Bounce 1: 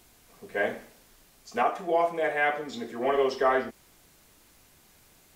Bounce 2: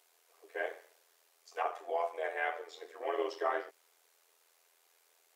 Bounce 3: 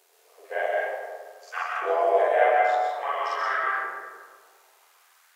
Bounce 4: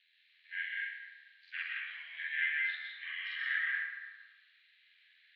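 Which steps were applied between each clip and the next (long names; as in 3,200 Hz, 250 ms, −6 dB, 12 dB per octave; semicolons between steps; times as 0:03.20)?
elliptic high-pass filter 410 Hz, stop band 40 dB; amplitude modulation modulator 84 Hz, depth 50%; level −6 dB
backwards echo 45 ms −3 dB; auto-filter high-pass saw up 0.55 Hz 380–1,700 Hz; comb and all-pass reverb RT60 1.7 s, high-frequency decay 0.4×, pre-delay 85 ms, DRR −2 dB; level +4 dB
Chebyshev band-pass filter 1,700–4,100 Hz, order 4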